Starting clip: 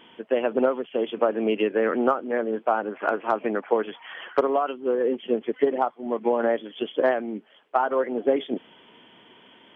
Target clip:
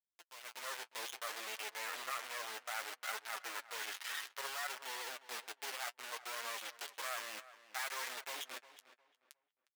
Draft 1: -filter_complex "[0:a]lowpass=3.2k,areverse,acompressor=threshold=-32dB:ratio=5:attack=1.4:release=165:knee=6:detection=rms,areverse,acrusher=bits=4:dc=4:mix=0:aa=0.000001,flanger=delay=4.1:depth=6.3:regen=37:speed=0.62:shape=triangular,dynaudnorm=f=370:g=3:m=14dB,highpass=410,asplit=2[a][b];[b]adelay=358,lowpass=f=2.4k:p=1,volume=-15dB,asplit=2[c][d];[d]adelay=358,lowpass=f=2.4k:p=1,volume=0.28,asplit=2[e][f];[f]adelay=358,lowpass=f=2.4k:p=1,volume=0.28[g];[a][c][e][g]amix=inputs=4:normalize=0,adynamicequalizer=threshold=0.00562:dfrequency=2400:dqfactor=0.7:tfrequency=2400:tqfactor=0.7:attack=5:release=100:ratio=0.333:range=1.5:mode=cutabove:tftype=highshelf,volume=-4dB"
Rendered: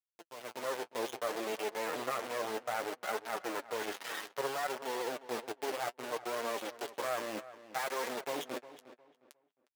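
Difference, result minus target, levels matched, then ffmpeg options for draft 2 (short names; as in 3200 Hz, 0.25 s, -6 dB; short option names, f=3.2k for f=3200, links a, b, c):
500 Hz band +11.0 dB
-filter_complex "[0:a]lowpass=3.2k,areverse,acompressor=threshold=-32dB:ratio=5:attack=1.4:release=165:knee=6:detection=rms,areverse,acrusher=bits=4:dc=4:mix=0:aa=0.000001,flanger=delay=4.1:depth=6.3:regen=37:speed=0.62:shape=triangular,dynaudnorm=f=370:g=3:m=14dB,highpass=1.4k,asplit=2[a][b];[b]adelay=358,lowpass=f=2.4k:p=1,volume=-15dB,asplit=2[c][d];[d]adelay=358,lowpass=f=2.4k:p=1,volume=0.28,asplit=2[e][f];[f]adelay=358,lowpass=f=2.4k:p=1,volume=0.28[g];[a][c][e][g]amix=inputs=4:normalize=0,adynamicequalizer=threshold=0.00562:dfrequency=2400:dqfactor=0.7:tfrequency=2400:tqfactor=0.7:attack=5:release=100:ratio=0.333:range=1.5:mode=cutabove:tftype=highshelf,volume=-4dB"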